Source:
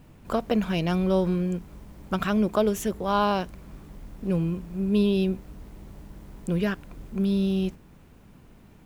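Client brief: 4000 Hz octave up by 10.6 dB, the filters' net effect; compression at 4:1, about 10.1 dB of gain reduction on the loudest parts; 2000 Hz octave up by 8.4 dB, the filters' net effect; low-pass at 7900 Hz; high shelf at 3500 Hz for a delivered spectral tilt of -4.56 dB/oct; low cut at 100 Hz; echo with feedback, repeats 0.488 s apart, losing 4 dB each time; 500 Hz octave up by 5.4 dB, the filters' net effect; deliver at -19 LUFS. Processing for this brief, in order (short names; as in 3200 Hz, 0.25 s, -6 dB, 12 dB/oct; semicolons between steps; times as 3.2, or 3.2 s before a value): HPF 100 Hz; LPF 7900 Hz; bell 500 Hz +6.5 dB; bell 2000 Hz +7.5 dB; high shelf 3500 Hz +8.5 dB; bell 4000 Hz +5.5 dB; compressor 4:1, threshold -26 dBFS; feedback echo 0.488 s, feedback 63%, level -4 dB; gain +10.5 dB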